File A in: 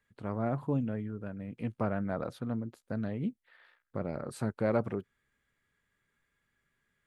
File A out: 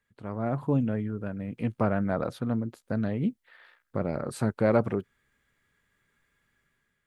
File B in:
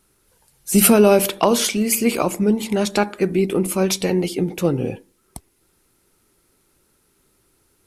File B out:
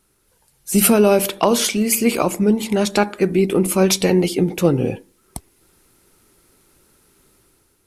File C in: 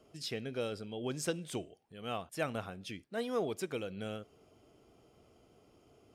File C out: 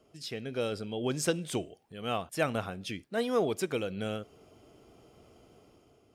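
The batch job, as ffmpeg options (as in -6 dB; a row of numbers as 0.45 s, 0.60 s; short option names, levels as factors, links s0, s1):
-af "dynaudnorm=f=150:g=7:m=2.24,volume=0.891"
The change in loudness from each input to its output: +5.5 LU, +1.0 LU, +5.5 LU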